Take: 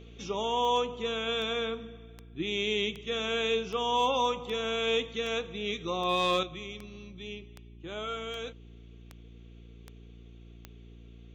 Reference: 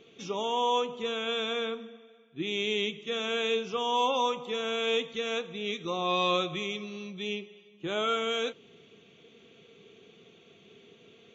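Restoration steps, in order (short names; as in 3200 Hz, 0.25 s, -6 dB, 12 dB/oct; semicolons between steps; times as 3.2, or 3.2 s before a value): clip repair -17.5 dBFS; de-click; de-hum 57.8 Hz, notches 6; gain 0 dB, from 6.43 s +7.5 dB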